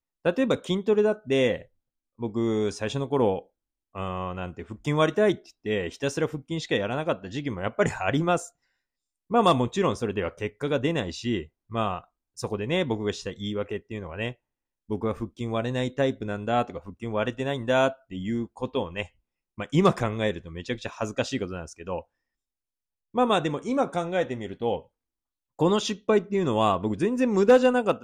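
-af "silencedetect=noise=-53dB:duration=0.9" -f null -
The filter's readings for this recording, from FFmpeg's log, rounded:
silence_start: 22.03
silence_end: 23.14 | silence_duration: 1.11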